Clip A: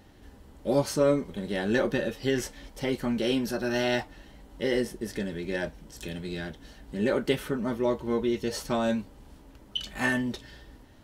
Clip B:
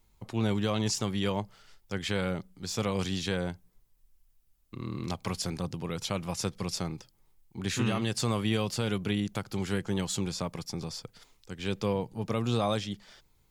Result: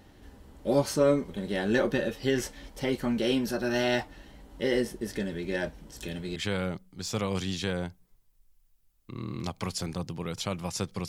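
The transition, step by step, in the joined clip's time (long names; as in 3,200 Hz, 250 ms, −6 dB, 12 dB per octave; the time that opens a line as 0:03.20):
clip A
0:06.36: continue with clip B from 0:02.00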